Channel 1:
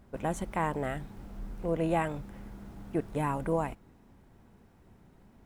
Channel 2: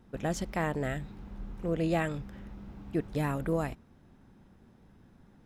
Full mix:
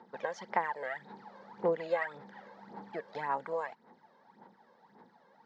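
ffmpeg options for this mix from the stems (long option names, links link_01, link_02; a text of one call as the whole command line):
ffmpeg -i stem1.wav -i stem2.wav -filter_complex "[0:a]highpass=1100,equalizer=frequency=1900:width=3.3:gain=7.5,volume=-9.5dB,asplit=2[link_01][link_02];[1:a]equalizer=frequency=920:width_type=o:width=0.65:gain=6.5,volume=-1,volume=-4.5dB[link_03];[link_02]apad=whole_len=240711[link_04];[link_03][link_04]sidechaincompress=threshold=-58dB:ratio=4:attack=37:release=258[link_05];[link_01][link_05]amix=inputs=2:normalize=0,aphaser=in_gain=1:out_gain=1:delay=1.9:decay=0.65:speed=1.8:type=sinusoidal,highpass=frequency=220:width=0.5412,highpass=frequency=220:width=1.3066,equalizer=frequency=290:width_type=q:width=4:gain=-9,equalizer=frequency=480:width_type=q:width=4:gain=7,equalizer=frequency=880:width_type=q:width=4:gain=9,equalizer=frequency=1700:width_type=q:width=4:gain=4,equalizer=frequency=2600:width_type=q:width=4:gain=-8,equalizer=frequency=4400:width_type=q:width=4:gain=6,lowpass=frequency=5400:width=0.5412,lowpass=frequency=5400:width=1.3066" out.wav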